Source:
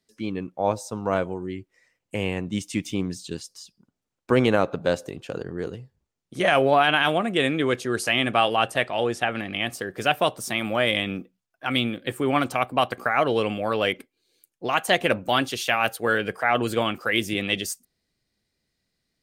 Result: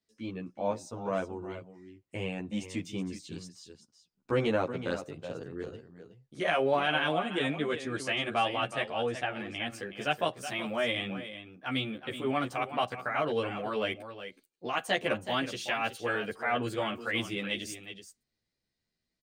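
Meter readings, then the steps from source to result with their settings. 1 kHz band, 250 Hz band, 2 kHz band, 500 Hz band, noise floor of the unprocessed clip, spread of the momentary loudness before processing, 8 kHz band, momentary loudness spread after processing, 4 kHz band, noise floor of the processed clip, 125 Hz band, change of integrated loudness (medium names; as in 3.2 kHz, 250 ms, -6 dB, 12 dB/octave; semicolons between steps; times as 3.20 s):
-8.5 dB, -8.0 dB, -8.0 dB, -8.0 dB, -82 dBFS, 13 LU, -10.5 dB, 14 LU, -8.5 dB, -85 dBFS, -8.0 dB, -8.5 dB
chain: peaking EQ 12 kHz -14.5 dB 0.37 oct; delay 372 ms -11 dB; endless flanger 11.5 ms +1.6 Hz; trim -5.5 dB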